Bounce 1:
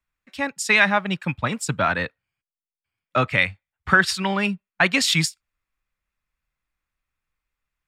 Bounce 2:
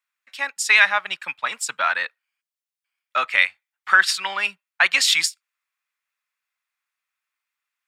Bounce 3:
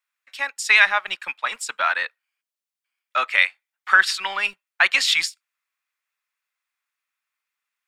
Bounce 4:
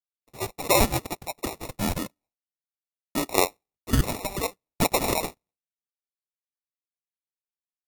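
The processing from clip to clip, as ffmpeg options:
-af "highpass=1.1k,volume=3dB"
-filter_complex "[0:a]acrossover=split=260|1100|5000[a][b][c][d];[a]acrusher=bits=6:dc=4:mix=0:aa=0.000001[e];[d]alimiter=limit=-21.5dB:level=0:latency=1:release=106[f];[e][b][c][f]amix=inputs=4:normalize=0"
-af "agate=range=-33dB:threshold=-50dB:ratio=3:detection=peak,acrusher=samples=28:mix=1:aa=0.000001,aemphasis=mode=production:type=cd,volume=-5.5dB"

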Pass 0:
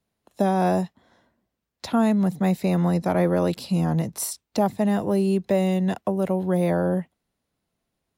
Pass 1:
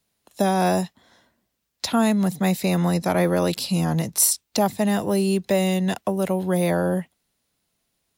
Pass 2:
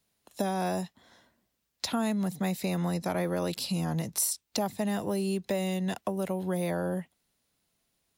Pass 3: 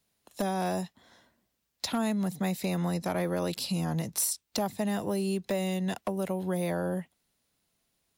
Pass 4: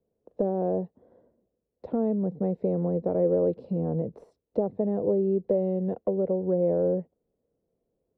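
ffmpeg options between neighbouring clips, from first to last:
-af "highshelf=f=2.1k:g=11.5"
-af "acompressor=threshold=-29dB:ratio=2,volume=-2.5dB"
-af "aeval=exprs='0.1*(abs(mod(val(0)/0.1+3,4)-2)-1)':c=same"
-af "lowpass=f=480:t=q:w=4.8"

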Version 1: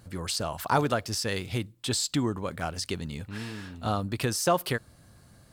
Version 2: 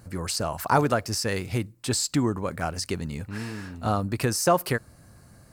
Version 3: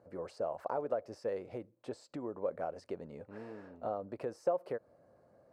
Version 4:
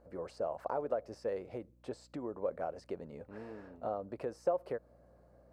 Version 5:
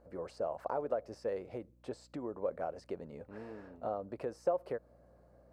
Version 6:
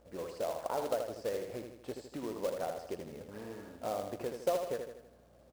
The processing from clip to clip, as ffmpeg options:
-af "equalizer=f=3.4k:t=o:w=0.5:g=-10,volume=3.5dB"
-af "acompressor=threshold=-26dB:ratio=5,bandpass=f=550:t=q:w=3.2:csg=0,volume=1.5dB"
-af "aeval=exprs='val(0)+0.000562*(sin(2*PI*60*n/s)+sin(2*PI*2*60*n/s)/2+sin(2*PI*3*60*n/s)/3+sin(2*PI*4*60*n/s)/4+sin(2*PI*5*60*n/s)/5)':c=same"
-af anull
-filter_complex "[0:a]acrusher=bits=3:mode=log:mix=0:aa=0.000001,asplit=2[a][b];[b]aecho=0:1:79|158|237|316|395|474:0.501|0.251|0.125|0.0626|0.0313|0.0157[c];[a][c]amix=inputs=2:normalize=0"

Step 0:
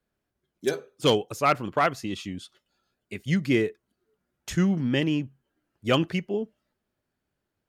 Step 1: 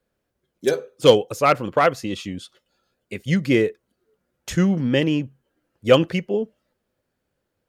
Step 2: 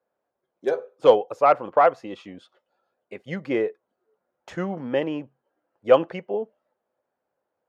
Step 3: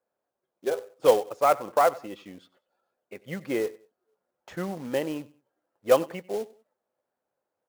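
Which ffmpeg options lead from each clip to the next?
-af "equalizer=f=510:w=5.8:g=10,volume=4dB"
-af "bandpass=f=790:t=q:w=1.7:csg=0,volume=4dB"
-af "aecho=1:1:95|190:0.0891|0.0276,acrusher=bits=4:mode=log:mix=0:aa=0.000001,volume=-4dB"

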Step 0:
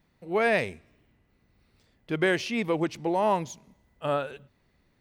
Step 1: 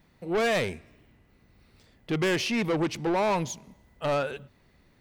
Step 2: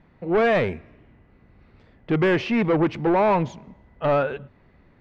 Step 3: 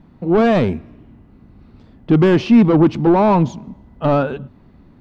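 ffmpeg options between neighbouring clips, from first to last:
-af "asoftclip=type=tanh:threshold=-28dB,volume=6dB"
-af "lowpass=2k,volume=6.5dB"
-af "equalizer=f=250:t=o:w=1:g=6,equalizer=f=500:t=o:w=1:g=-6,equalizer=f=2k:t=o:w=1:g=-11,volume=8dB"

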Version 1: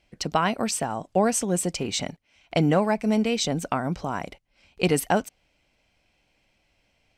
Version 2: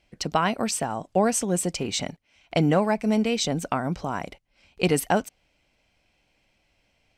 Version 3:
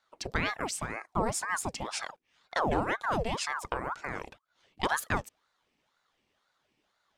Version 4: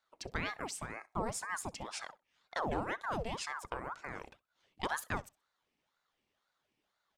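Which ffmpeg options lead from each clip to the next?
-af anull
-af "aeval=exprs='val(0)*sin(2*PI*840*n/s+840*0.75/2*sin(2*PI*2*n/s))':c=same,volume=-5dB"
-af "aecho=1:1:64|128:0.0631|0.0126,volume=-7dB"

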